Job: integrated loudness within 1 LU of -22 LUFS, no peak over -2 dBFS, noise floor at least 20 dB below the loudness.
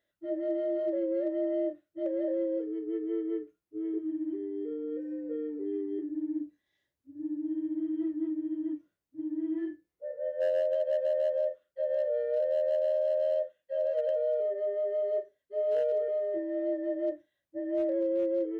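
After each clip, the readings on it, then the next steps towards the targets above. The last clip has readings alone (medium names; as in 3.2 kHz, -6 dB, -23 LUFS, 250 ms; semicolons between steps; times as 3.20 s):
clipped samples 0.5%; clipping level -22.5 dBFS; loudness -32.0 LUFS; peak level -22.5 dBFS; loudness target -22.0 LUFS
-> clip repair -22.5 dBFS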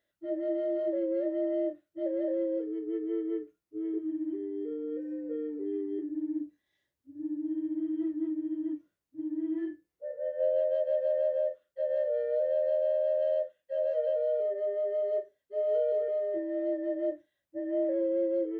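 clipped samples 0.0%; loudness -32.0 LUFS; peak level -20.0 dBFS; loudness target -22.0 LUFS
-> trim +10 dB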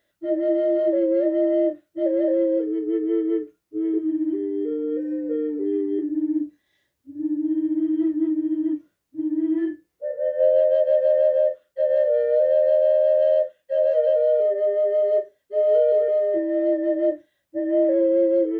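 loudness -22.0 LUFS; peak level -10.0 dBFS; noise floor -75 dBFS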